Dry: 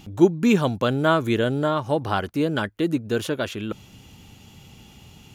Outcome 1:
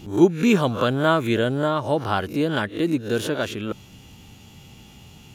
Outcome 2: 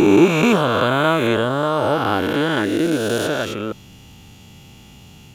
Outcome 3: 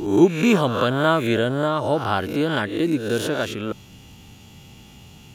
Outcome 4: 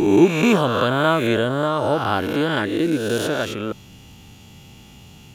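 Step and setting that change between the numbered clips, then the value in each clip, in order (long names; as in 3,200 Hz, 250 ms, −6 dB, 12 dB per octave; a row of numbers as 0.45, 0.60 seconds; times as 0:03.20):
peak hold with a rise ahead of every peak, rising 60 dB in: 0.32, 3.06, 0.68, 1.42 seconds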